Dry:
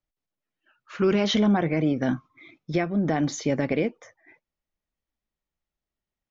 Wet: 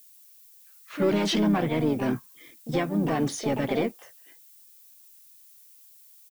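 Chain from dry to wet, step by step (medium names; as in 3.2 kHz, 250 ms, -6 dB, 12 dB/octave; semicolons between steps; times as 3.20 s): waveshaping leveller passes 1; harmony voices -3 st -10 dB, +7 st -6 dB; added noise violet -48 dBFS; trim -5.5 dB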